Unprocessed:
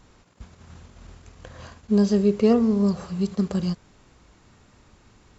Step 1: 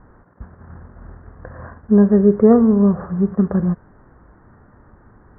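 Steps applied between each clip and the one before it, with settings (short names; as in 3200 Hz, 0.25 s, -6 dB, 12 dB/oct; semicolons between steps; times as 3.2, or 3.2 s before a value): steep low-pass 1800 Hz 72 dB/oct; gain +7 dB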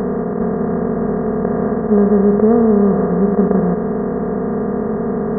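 per-bin compression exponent 0.2; gain -4 dB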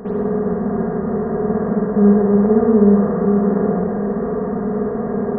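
reverb RT60 1.2 s, pre-delay 49 ms, DRR -12.5 dB; gain -15 dB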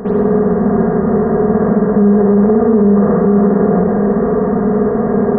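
limiter -10.5 dBFS, peak gain reduction 9 dB; gain +7.5 dB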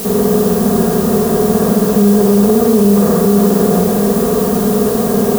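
added noise blue -25 dBFS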